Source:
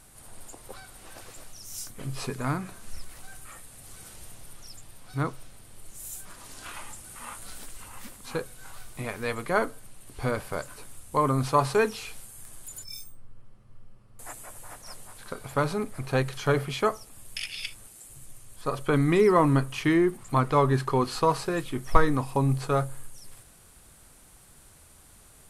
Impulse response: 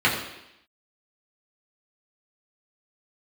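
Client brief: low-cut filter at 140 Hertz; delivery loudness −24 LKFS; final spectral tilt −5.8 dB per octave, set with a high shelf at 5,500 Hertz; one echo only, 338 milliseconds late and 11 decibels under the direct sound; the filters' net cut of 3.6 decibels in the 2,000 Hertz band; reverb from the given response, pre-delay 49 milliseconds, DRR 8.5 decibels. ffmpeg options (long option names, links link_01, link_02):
-filter_complex "[0:a]highpass=140,equalizer=frequency=2000:width_type=o:gain=-4.5,highshelf=frequency=5500:gain=-3.5,aecho=1:1:338:0.282,asplit=2[link_01][link_02];[1:a]atrim=start_sample=2205,adelay=49[link_03];[link_02][link_03]afir=irnorm=-1:irlink=0,volume=-27dB[link_04];[link_01][link_04]amix=inputs=2:normalize=0,volume=3.5dB"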